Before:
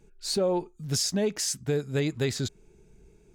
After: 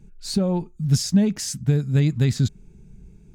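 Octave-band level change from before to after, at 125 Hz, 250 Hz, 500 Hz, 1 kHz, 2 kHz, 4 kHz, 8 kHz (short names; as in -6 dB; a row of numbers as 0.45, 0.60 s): +12.5 dB, +10.0 dB, -2.0 dB, n/a, 0.0 dB, 0.0 dB, 0.0 dB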